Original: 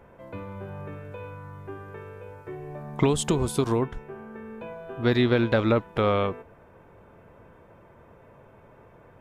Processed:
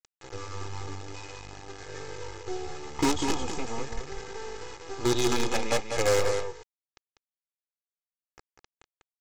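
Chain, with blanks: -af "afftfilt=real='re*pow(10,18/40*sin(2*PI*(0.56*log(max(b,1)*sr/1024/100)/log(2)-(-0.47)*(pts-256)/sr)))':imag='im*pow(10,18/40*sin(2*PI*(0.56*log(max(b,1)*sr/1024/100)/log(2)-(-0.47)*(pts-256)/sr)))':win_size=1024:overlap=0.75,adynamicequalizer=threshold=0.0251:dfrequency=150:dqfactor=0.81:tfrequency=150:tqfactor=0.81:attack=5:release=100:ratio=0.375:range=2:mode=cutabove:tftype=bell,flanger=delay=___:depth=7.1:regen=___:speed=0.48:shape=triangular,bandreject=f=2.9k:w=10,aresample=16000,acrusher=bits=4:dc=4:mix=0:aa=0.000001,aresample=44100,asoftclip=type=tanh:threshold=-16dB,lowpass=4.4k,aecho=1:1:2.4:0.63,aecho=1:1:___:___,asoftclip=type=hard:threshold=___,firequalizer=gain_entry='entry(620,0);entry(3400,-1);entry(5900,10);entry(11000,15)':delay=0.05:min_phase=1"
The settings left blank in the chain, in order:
7.2, -31, 196, 0.473, -18dB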